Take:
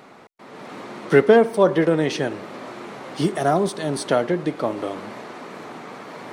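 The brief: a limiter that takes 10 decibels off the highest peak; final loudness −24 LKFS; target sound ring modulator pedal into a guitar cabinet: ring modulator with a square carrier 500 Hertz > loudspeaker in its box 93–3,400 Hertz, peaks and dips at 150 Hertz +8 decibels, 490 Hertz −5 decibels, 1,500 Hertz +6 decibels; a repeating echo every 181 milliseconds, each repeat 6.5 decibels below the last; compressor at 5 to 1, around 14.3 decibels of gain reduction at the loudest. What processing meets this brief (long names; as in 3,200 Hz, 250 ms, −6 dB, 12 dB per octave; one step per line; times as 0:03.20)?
downward compressor 5 to 1, threshold −25 dBFS
brickwall limiter −22.5 dBFS
repeating echo 181 ms, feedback 47%, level −6.5 dB
ring modulator with a square carrier 500 Hz
loudspeaker in its box 93–3,400 Hz, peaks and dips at 150 Hz +8 dB, 490 Hz −5 dB, 1,500 Hz +6 dB
level +8 dB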